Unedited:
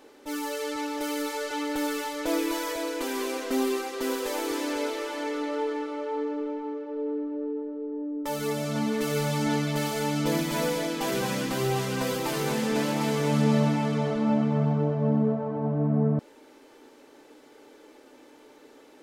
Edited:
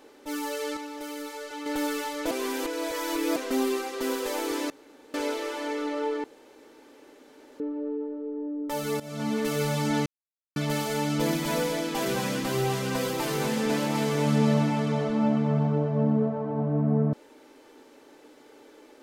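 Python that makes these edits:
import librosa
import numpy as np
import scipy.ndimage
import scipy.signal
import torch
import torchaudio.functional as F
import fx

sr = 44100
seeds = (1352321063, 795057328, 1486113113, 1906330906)

y = fx.edit(x, sr, fx.clip_gain(start_s=0.77, length_s=0.89, db=-6.5),
    fx.reverse_span(start_s=2.31, length_s=1.05),
    fx.insert_room_tone(at_s=4.7, length_s=0.44),
    fx.room_tone_fill(start_s=5.8, length_s=1.36),
    fx.fade_in_from(start_s=8.56, length_s=0.34, floor_db=-15.5),
    fx.insert_silence(at_s=9.62, length_s=0.5), tone=tone)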